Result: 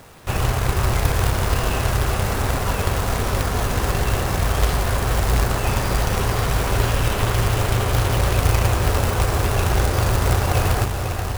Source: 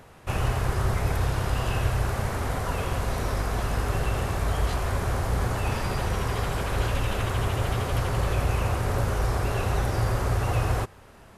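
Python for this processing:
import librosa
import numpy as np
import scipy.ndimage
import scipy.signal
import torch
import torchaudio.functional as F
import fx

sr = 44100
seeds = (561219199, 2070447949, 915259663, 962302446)

y = fx.echo_diffused(x, sr, ms=498, feedback_pct=56, wet_db=-6)
y = fx.quant_companded(y, sr, bits=4)
y = y * 10.0 ** (4.5 / 20.0)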